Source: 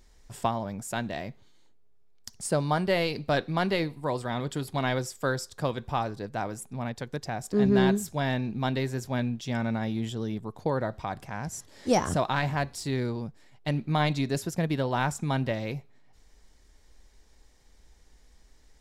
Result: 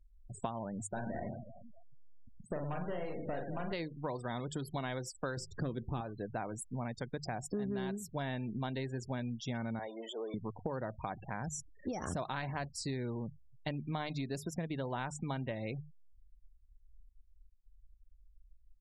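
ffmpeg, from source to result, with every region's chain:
-filter_complex "[0:a]asettb=1/sr,asplit=3[s0][s1][s2];[s0]atrim=end=0.874[s3];[s1]atrim=start=0.87:end=3.73,asetpts=PTS-STARTPTS,afade=t=in:d=0.004:c=qsin,afade=t=out:st=2.856:d=0.004:c=qsin,lowpass=f=1100:p=1,aeval=exprs='(tanh(22.4*val(0)+0.4)-tanh(0.4))/22.4':c=same,aecho=1:1:40|104|206.4|370.2|632.4:0.631|0.398|0.251|0.158|0.1,atrim=end_sample=126126[s4];[s2]atrim=start=3.726[s5];[s3][s4]acrossfade=d=0.004:c1=hsin:c2=qsin[s6];[s6][s5]acrossfade=d=0.004:c1=qsin:c2=hsin,asettb=1/sr,asplit=3[s7][s8][s9];[s7]atrim=end=5.374[s10];[s8]atrim=start=5.37:end=6.01,asetpts=PTS-STARTPTS,afade=t=in:d=0.004:c=qsin,afade=t=out:st=0.636:d=0.004:c=qsin,lowshelf=f=480:t=q:w=1.5:g=8.5,asoftclip=type=hard:threshold=0.188[s11];[s9]atrim=start=6.006[s12];[s10][s11]acrossfade=d=0.004:c1=hsin:c2=qsin[s13];[s13][s12]acrossfade=d=0.004:c1=qsin:c2=hsin,asettb=1/sr,asplit=3[s14][s15][s16];[s14]atrim=end=9.794[s17];[s15]atrim=start=9.79:end=10.34,asetpts=PTS-STARTPTS,afade=t=in:d=0.004:c=qsin,afade=t=out:st=0.546:d=0.004:c=qsin,aeval=exprs='val(0)+0.5*0.0126*sgn(val(0))':c=same,highpass=f=470:w=0.5412,highpass=f=470:w=1.3066,tiltshelf=f=810:g=5[s18];[s16]atrim=start=10.336[s19];[s17][s18]acrossfade=d=0.004:c1=hsin:c2=qsin[s20];[s20][s19]acrossfade=d=0.004:c1=qsin:c2=hsin,asettb=1/sr,asplit=3[s21][s22][s23];[s21]atrim=end=11.434[s24];[s22]atrim=start=11.43:end=12.08,asetpts=PTS-STARTPTS,afade=t=in:d=0.004:c=qsin,afade=t=out:st=0.646:d=0.004:c=qsin,lowshelf=f=150:g=2.5,bandreject=f=1000:w=6.4,acompressor=threshold=0.0562:ratio=16:attack=3.2:release=140:knee=1:detection=peak[s25];[s23]atrim=start=12.076[s26];[s24][s25]acrossfade=d=0.004:c1=hsin:c2=qsin[s27];[s27][s26]acrossfade=d=0.004:c1=qsin:c2=hsin,bandreject=f=50:t=h:w=6,bandreject=f=100:t=h:w=6,bandreject=f=150:t=h:w=6,afftfilt=real='re*gte(hypot(re,im),0.0112)':imag='im*gte(hypot(re,im),0.0112)':win_size=1024:overlap=0.75,acompressor=threshold=0.02:ratio=6,volume=0.891"

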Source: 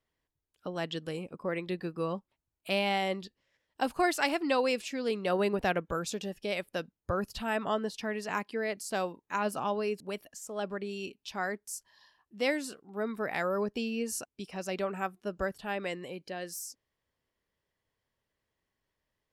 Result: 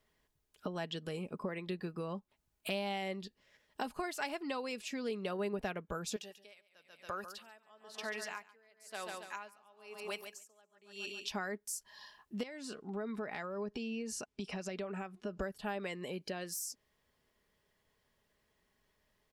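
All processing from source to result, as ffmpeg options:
-filter_complex "[0:a]asettb=1/sr,asplit=3[s0][s1][s2];[s0]atrim=end=6.164[s3];[s1]atrim=start=6.16:end=11.28,asetpts=PTS-STARTPTS,afade=t=in:d=0.004:c=qsin,afade=t=out:st=5.116:d=0.004:c=qsin,highpass=f=1500:p=1,aecho=1:1:140|280|420|560:0.355|0.138|0.054|0.021,atrim=end_sample=225792,aeval=exprs='val(0)*pow(10,-35*(0.5-0.5*cos(2*PI*1*n/s))/20)':c=same[s4];[s2]atrim=start=11.276[s5];[s3][s4]acrossfade=d=0.004:c1=hsin:c2=qsin[s6];[s6][s5]acrossfade=d=0.004:c1=qsin:c2=hsin,asettb=1/sr,asplit=3[s7][s8][s9];[s7]atrim=end=12.434[s10];[s8]atrim=start=12.43:end=15.4,asetpts=PTS-STARTPTS,afade=t=in:d=0.004:c=qsin,afade=t=out:st=2.966:d=0.004:c=qsin,lowpass=6600,acompressor=threshold=0.00562:ratio=2.5:attack=3.2:release=140:knee=1:detection=peak[s11];[s9]atrim=start=15.396[s12];[s10][s11]acrossfade=d=0.004:c1=hsin:c2=qsin[s13];[s13][s12]acrossfade=d=0.004:c1=qsin:c2=hsin,acompressor=threshold=0.00501:ratio=4,aecho=1:1:4.8:0.34,volume=2.24"

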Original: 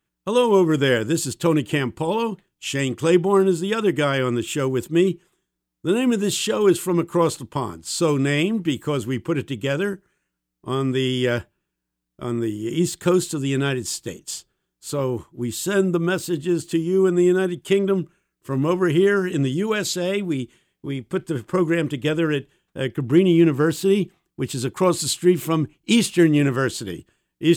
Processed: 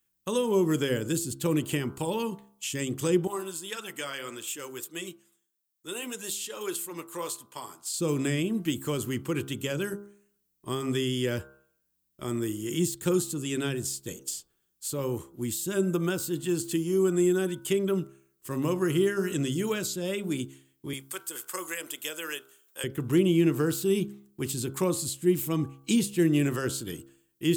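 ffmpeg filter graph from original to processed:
-filter_complex "[0:a]asettb=1/sr,asplit=3[s0][s1][s2];[s0]atrim=end=3.274[s3];[s1]atrim=start=3.27:end=7.94,asetpts=PTS-STARTPTS,afade=t=in:d=0.004:c=qsin,afade=t=out:st=4.666:d=0.004:c=qsin,highpass=f=860:p=1,flanger=delay=1.2:depth=6:regen=-59:speed=1.7:shape=sinusoidal[s4];[s2]atrim=start=7.936[s5];[s3][s4]acrossfade=d=0.004:c1=hsin:c2=qsin[s6];[s6][s5]acrossfade=d=0.004:c1=qsin:c2=hsin,asettb=1/sr,asplit=3[s7][s8][s9];[s7]atrim=end=20.934[s10];[s8]atrim=start=20.93:end=22.84,asetpts=PTS-STARTPTS,afade=t=in:d=0.004:c=qsin,afade=t=out:st=1.906:d=0.004:c=qsin,highpass=770,highshelf=f=6200:g=11.5[s11];[s9]atrim=start=22.836[s12];[s10][s11]acrossfade=d=0.004:c1=hsin:c2=qsin[s13];[s13][s12]acrossfade=d=0.004:c1=qsin:c2=hsin,aemphasis=mode=production:type=75kf,bandreject=f=67.63:t=h:w=4,bandreject=f=135.26:t=h:w=4,bandreject=f=202.89:t=h:w=4,bandreject=f=270.52:t=h:w=4,bandreject=f=338.15:t=h:w=4,bandreject=f=405.78:t=h:w=4,bandreject=f=473.41:t=h:w=4,bandreject=f=541.04:t=h:w=4,bandreject=f=608.67:t=h:w=4,bandreject=f=676.3:t=h:w=4,bandreject=f=743.93:t=h:w=4,bandreject=f=811.56:t=h:w=4,bandreject=f=879.19:t=h:w=4,bandreject=f=946.82:t=h:w=4,bandreject=f=1014.45:t=h:w=4,bandreject=f=1082.08:t=h:w=4,bandreject=f=1149.71:t=h:w=4,bandreject=f=1217.34:t=h:w=4,bandreject=f=1284.97:t=h:w=4,bandreject=f=1352.6:t=h:w=4,bandreject=f=1420.23:t=h:w=4,bandreject=f=1487.86:t=h:w=4,bandreject=f=1555.49:t=h:w=4,acrossover=split=470[s14][s15];[s15]acompressor=threshold=0.0501:ratio=6[s16];[s14][s16]amix=inputs=2:normalize=0,volume=0.501"

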